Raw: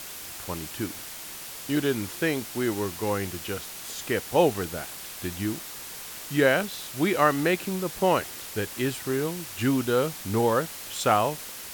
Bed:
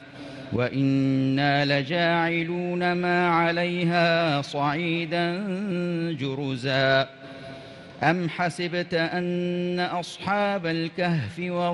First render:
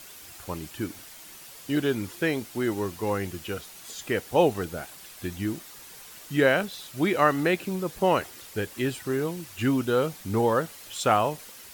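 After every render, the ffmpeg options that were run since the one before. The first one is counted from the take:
ffmpeg -i in.wav -af "afftdn=noise_reduction=8:noise_floor=-40" out.wav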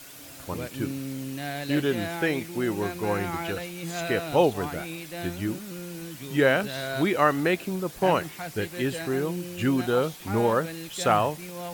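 ffmpeg -i in.wav -i bed.wav -filter_complex "[1:a]volume=-11.5dB[link_01];[0:a][link_01]amix=inputs=2:normalize=0" out.wav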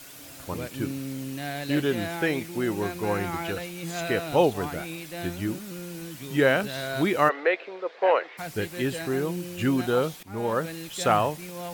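ffmpeg -i in.wav -filter_complex "[0:a]asplit=3[link_01][link_02][link_03];[link_01]afade=type=out:start_time=7.28:duration=0.02[link_04];[link_02]highpass=frequency=440:width=0.5412,highpass=frequency=440:width=1.3066,equalizer=frequency=490:width_type=q:width=4:gain=7,equalizer=frequency=2000:width_type=q:width=4:gain=4,equalizer=frequency=3000:width_type=q:width=4:gain=-4,lowpass=frequency=3600:width=0.5412,lowpass=frequency=3600:width=1.3066,afade=type=in:start_time=7.28:duration=0.02,afade=type=out:start_time=8.37:duration=0.02[link_05];[link_03]afade=type=in:start_time=8.37:duration=0.02[link_06];[link_04][link_05][link_06]amix=inputs=3:normalize=0,asplit=2[link_07][link_08];[link_07]atrim=end=10.23,asetpts=PTS-STARTPTS,afade=type=out:start_time=10.226:duration=0.004:curve=hsin:silence=0.125893[link_09];[link_08]atrim=start=10.23,asetpts=PTS-STARTPTS,afade=type=in:duration=0.45:silence=0.125893[link_10];[link_09][link_10]concat=n=2:v=0:a=1" out.wav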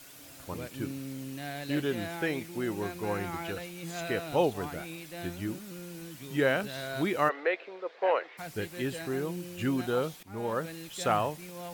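ffmpeg -i in.wav -af "volume=-5.5dB" out.wav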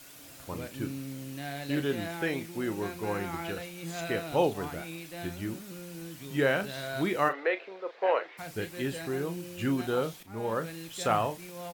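ffmpeg -i in.wav -filter_complex "[0:a]asplit=2[link_01][link_02];[link_02]adelay=36,volume=-11dB[link_03];[link_01][link_03]amix=inputs=2:normalize=0" out.wav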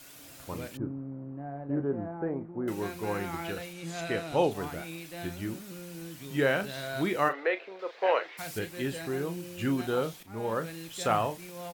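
ffmpeg -i in.wav -filter_complex "[0:a]asettb=1/sr,asplit=3[link_01][link_02][link_03];[link_01]atrim=end=0.774[link_04];[link_02]atrim=start=0.77:end=2.68,asetpts=PTS-STARTPTS,afade=type=in:duration=0.004:curve=qsin,afade=type=out:start_time=1.906:duration=0.004:curve=qsin,lowpass=frequency=1100:width=0.5412,lowpass=frequency=1100:width=1.3066[link_05];[link_03]atrim=start=2.676[link_06];[link_04][link_05]acrossfade=duration=0.004:curve1=hsin:curve2=qsin[link_07];[link_07][link_06]acrossfade=duration=0.004:curve1=qsin:curve2=hsin,asettb=1/sr,asplit=3[link_08][link_09][link_10];[link_08]atrim=end=3.734[link_11];[link_09]atrim=start=3.73:end=4.51,asetpts=PTS-STARTPTS,afade=type=in:duration=0.004:curve=qsin,afade=type=out:start_time=0.776:duration=0.004:curve=qsin,lowpass=10000[link_12];[link_10]atrim=start=4.506[link_13];[link_11][link_12]acrossfade=duration=0.004:curve1=hsin:curve2=qsin[link_14];[link_14][link_13]acrossfade=duration=0.004:curve1=qsin:curve2=hsin,asettb=1/sr,asplit=3[link_15][link_16][link_17];[link_15]atrim=end=7.794[link_18];[link_16]atrim=start=7.79:end=8.59,asetpts=PTS-STARTPTS,afade=type=in:duration=0.004:curve=qsin,afade=type=out:start_time=0.796:duration=0.004:curve=qsin,highshelf=frequency=2500:gain=8[link_19];[link_17]atrim=start=8.586[link_20];[link_18][link_19]acrossfade=duration=0.004:curve1=hsin:curve2=qsin[link_21];[link_21][link_20]acrossfade=duration=0.004:curve1=qsin:curve2=hsin" out.wav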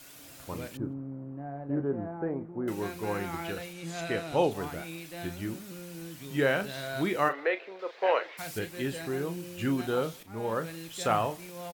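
ffmpeg -i in.wav -filter_complex "[0:a]asplit=2[link_01][link_02];[link_02]adelay=163.3,volume=-29dB,highshelf=frequency=4000:gain=-3.67[link_03];[link_01][link_03]amix=inputs=2:normalize=0" out.wav

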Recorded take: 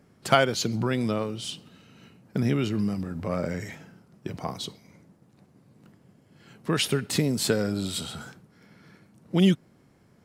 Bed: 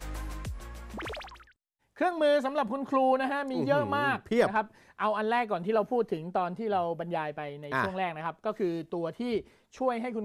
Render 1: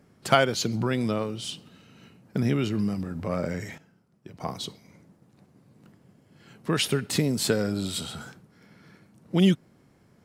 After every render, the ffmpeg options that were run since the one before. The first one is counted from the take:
ffmpeg -i in.wav -filter_complex "[0:a]asplit=3[link_01][link_02][link_03];[link_01]atrim=end=3.782[link_04];[link_02]atrim=start=3.778:end=4.402,asetpts=PTS-STARTPTS,volume=-10.5dB[link_05];[link_03]atrim=start=4.398[link_06];[link_04][link_05]acrossfade=duration=0.004:curve1=hsin:curve2=hsin[link_07];[link_07][link_06]acrossfade=duration=0.004:curve1=hsin:curve2=hsin" out.wav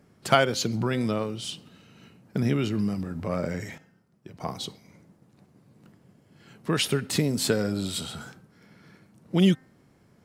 ffmpeg -i in.wav -af "bandreject=frequency=260.5:width_type=h:width=4,bandreject=frequency=521:width_type=h:width=4,bandreject=frequency=781.5:width_type=h:width=4,bandreject=frequency=1042:width_type=h:width=4,bandreject=frequency=1302.5:width_type=h:width=4,bandreject=frequency=1563:width_type=h:width=4,bandreject=frequency=1823.5:width_type=h:width=4,bandreject=frequency=2084:width_type=h:width=4" out.wav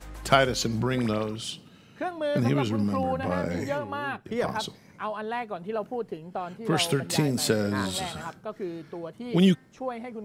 ffmpeg -i in.wav -i bed.wav -filter_complex "[1:a]volume=-4dB[link_01];[0:a][link_01]amix=inputs=2:normalize=0" out.wav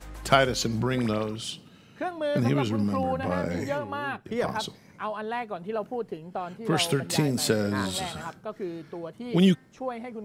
ffmpeg -i in.wav -af anull out.wav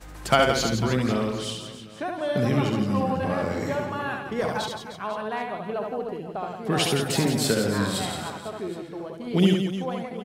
ffmpeg -i in.wav -af "aecho=1:1:70|168|305.2|497.3|766.2:0.631|0.398|0.251|0.158|0.1" out.wav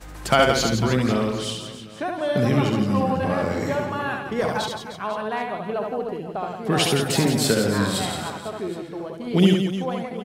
ffmpeg -i in.wav -af "volume=3dB,alimiter=limit=-3dB:level=0:latency=1" out.wav

